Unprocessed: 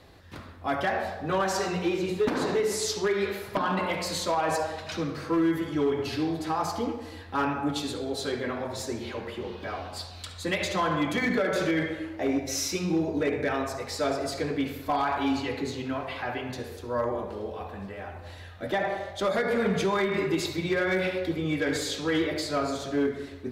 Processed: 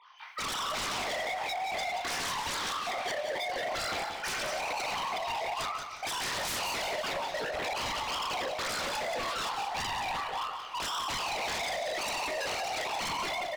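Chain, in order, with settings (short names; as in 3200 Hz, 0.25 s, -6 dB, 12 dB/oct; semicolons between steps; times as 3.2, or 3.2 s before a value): sine-wave speech; LPF 1500 Hz 6 dB/oct; compressor 10:1, threshold -31 dBFS, peak gain reduction 19.5 dB; HPF 290 Hz 12 dB/oct; Schroeder reverb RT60 0.44 s, combs from 28 ms, DRR -5 dB; speed mistake 45 rpm record played at 78 rpm; wavefolder -33 dBFS; frequency-shifting echo 0.305 s, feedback 60%, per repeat -33 Hz, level -19 dB; lo-fi delay 0.179 s, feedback 35%, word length 12-bit, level -7.5 dB; gain +3.5 dB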